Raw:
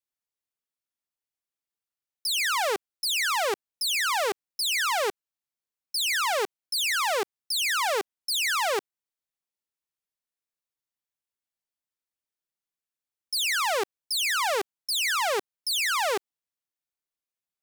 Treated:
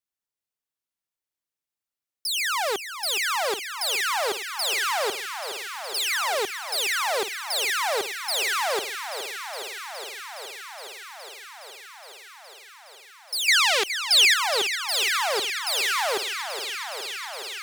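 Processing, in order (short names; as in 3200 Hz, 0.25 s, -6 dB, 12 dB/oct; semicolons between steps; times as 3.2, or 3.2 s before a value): 13.48–14.34 weighting filter D; thinning echo 0.416 s, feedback 83%, high-pass 150 Hz, level -10 dB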